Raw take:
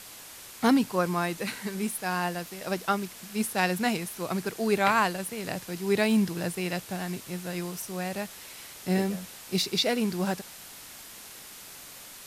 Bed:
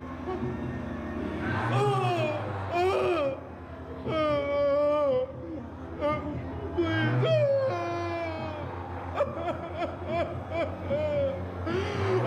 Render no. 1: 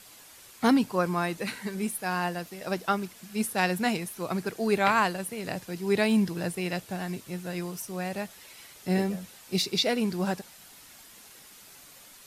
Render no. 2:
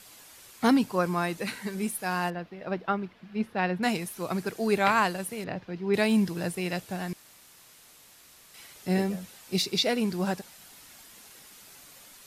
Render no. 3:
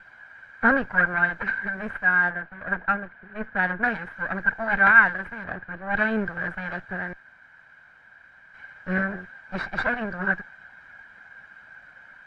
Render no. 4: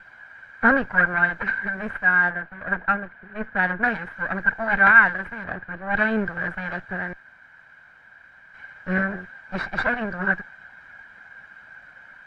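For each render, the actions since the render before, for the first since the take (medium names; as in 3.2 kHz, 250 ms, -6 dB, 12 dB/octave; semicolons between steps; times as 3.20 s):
noise reduction 7 dB, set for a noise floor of -46 dBFS
2.30–3.83 s: distance through air 340 m; 5.44–5.94 s: distance through air 270 m; 7.13–8.54 s: room tone
comb filter that takes the minimum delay 1.3 ms; resonant low-pass 1.6 kHz, resonance Q 12
trim +2 dB; peak limiter -3 dBFS, peak gain reduction 1 dB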